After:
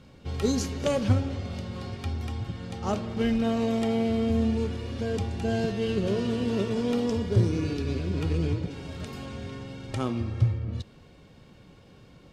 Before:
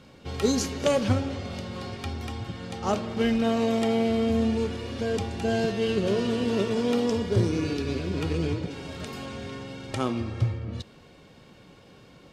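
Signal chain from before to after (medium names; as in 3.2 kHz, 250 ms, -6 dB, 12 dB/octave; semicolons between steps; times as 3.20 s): bass shelf 160 Hz +9.5 dB; trim -4 dB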